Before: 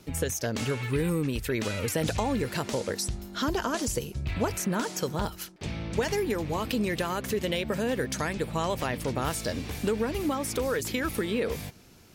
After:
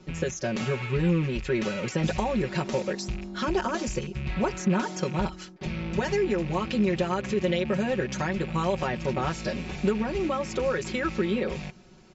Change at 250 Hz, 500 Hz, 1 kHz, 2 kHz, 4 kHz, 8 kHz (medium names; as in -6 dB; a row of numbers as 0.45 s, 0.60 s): +3.0 dB, +2.0 dB, +1.5 dB, +1.0 dB, -2.0 dB, -6.0 dB